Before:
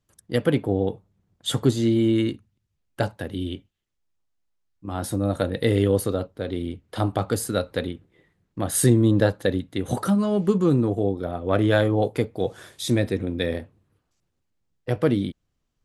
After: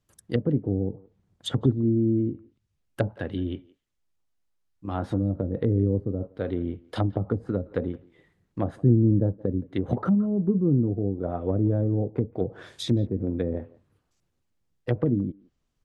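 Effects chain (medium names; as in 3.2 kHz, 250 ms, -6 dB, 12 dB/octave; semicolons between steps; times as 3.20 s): low-pass that closes with the level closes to 300 Hz, closed at -19.5 dBFS; speakerphone echo 170 ms, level -22 dB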